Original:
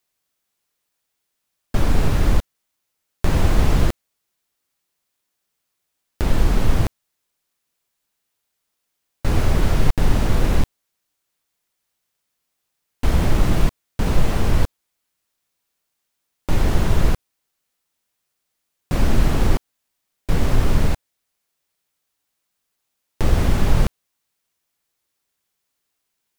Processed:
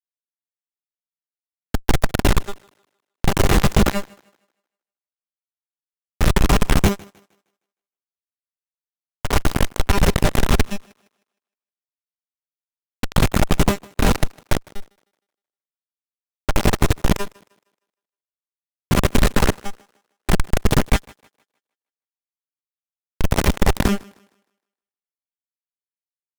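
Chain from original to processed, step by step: chorus 0.47 Hz, delay 16.5 ms, depth 7.2 ms; AGC gain up to 12.5 dB; power-law curve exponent 1.4; notch 4600 Hz, Q 8.1; resonator 200 Hz, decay 0.34 s, harmonics all, mix 80%; fuzz box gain 40 dB, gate -44 dBFS; on a send: thinning echo 0.155 s, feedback 34%, high-pass 190 Hz, level -23 dB; on the sum: gain +3 dB

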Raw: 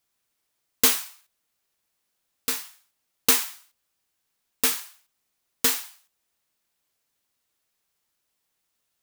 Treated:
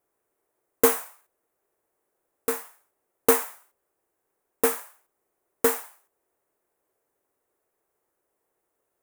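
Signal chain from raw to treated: EQ curve 230 Hz 0 dB, 380 Hz +15 dB, 1900 Hz -1 dB, 3100 Hz -12 dB, 4500 Hz -15 dB, 9000 Hz -3 dB

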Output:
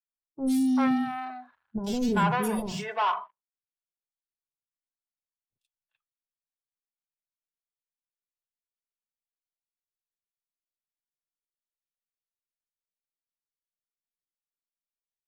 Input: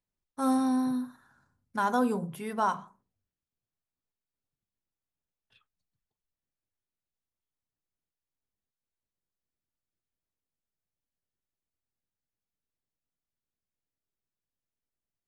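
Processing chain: soft clip -19.5 dBFS, distortion -20 dB; sample leveller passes 3; spectral noise reduction 16 dB; three bands offset in time lows, highs, mids 90/390 ms, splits 500/3400 Hz; gain +1 dB

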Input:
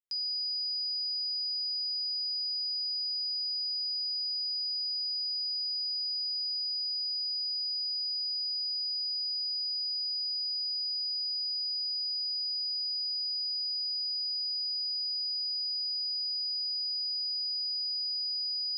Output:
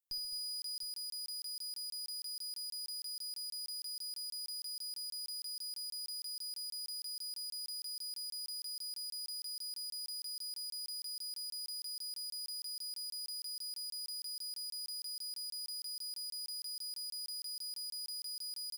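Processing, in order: differentiator; tube stage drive 42 dB, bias 0.55; on a send: tapped delay 64/135/213/263/718 ms -12.5/-15/-12/-19.5/-13 dB; on the sum: crackling interface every 0.16 s, samples 1024, zero, from 0.62; gain +4.5 dB

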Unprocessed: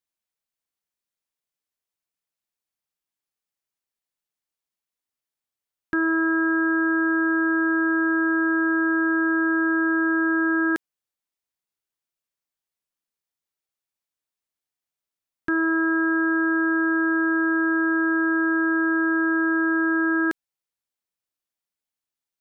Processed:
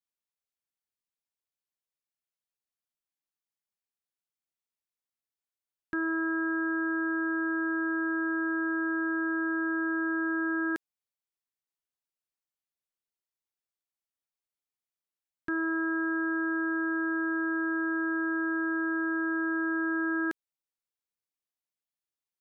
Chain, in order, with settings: vocal rider within 4 dB 2 s; gain -8 dB

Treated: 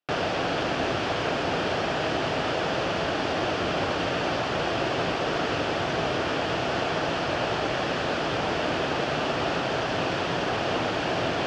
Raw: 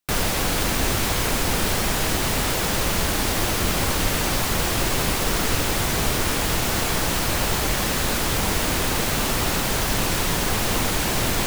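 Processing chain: speaker cabinet 160–4100 Hz, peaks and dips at 210 Hz -8 dB, 660 Hz +5 dB, 1000 Hz -4 dB, 2100 Hz -7 dB, 3900 Hz -8 dB

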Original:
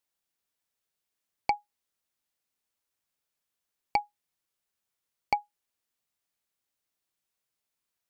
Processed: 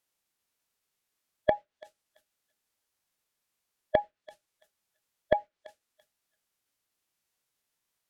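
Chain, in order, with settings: thinning echo 0.336 s, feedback 19%, high-pass 990 Hz, level -22 dB; formant shift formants -5 st; treble ducked by the level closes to 2100 Hz, closed at -32.5 dBFS; gain +4 dB

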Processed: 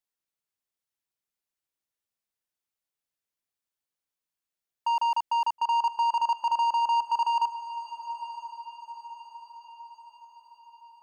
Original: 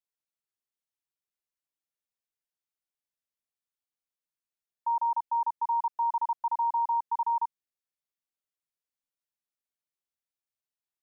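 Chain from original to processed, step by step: in parallel at -0.5 dB: negative-ratio compressor -33 dBFS, ratio -1; on the sum: sample leveller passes 2; diffused feedback echo 0.973 s, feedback 52%, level -12.5 dB; gain -3 dB

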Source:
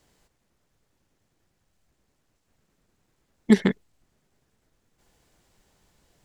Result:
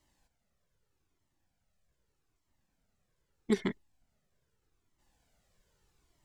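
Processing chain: cascading flanger falling 0.81 Hz; gain -4.5 dB

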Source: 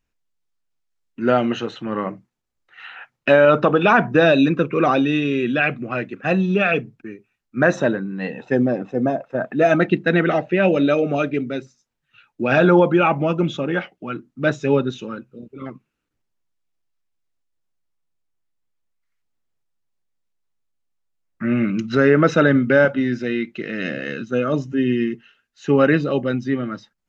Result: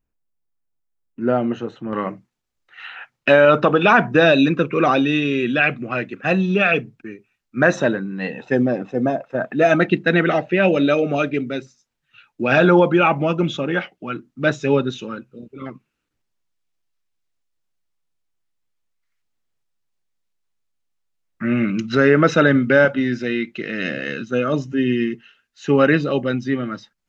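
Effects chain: bell 4000 Hz -12 dB 2.9 oct, from 1.93 s +3.5 dB

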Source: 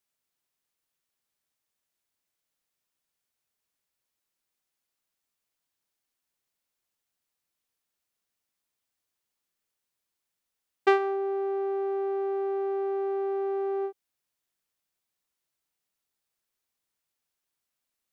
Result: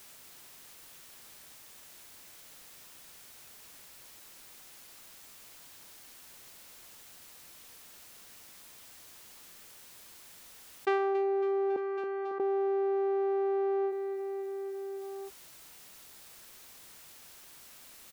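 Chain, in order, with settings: 11.76–12.4 ladder band-pass 1700 Hz, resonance 35%; feedback echo 0.276 s, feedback 56%, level -18 dB; fast leveller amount 70%; gain -8.5 dB

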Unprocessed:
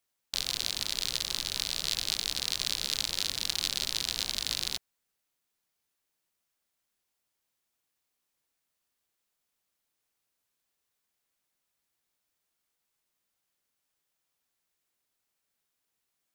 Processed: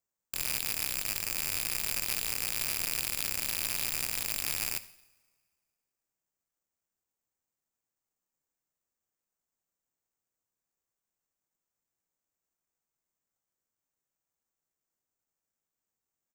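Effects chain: rattling part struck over -57 dBFS, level -15 dBFS; vibrato 5.7 Hz 8 cents; tape spacing loss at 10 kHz 35 dB; feedback echo 83 ms, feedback 38%, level -22 dB; two-slope reverb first 0.6 s, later 2 s, from -17 dB, DRR 13 dB; low-pass opened by the level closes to 3000 Hz; careless resampling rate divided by 6×, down none, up zero stuff; gain -3 dB

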